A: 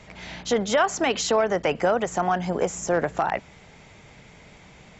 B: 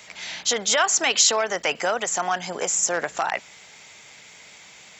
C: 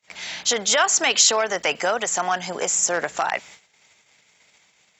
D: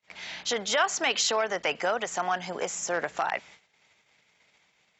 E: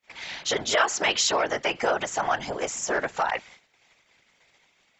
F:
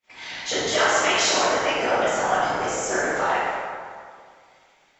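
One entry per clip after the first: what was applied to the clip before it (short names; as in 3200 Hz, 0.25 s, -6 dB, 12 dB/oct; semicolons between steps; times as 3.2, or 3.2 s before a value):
tilt +4.5 dB/oct
gate -44 dBFS, range -33 dB; gain +1.5 dB
air absorption 110 m; gain -4.5 dB
whisperiser; gain +2.5 dB
plate-style reverb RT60 2.1 s, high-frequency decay 0.55×, DRR -8.5 dB; gain -5 dB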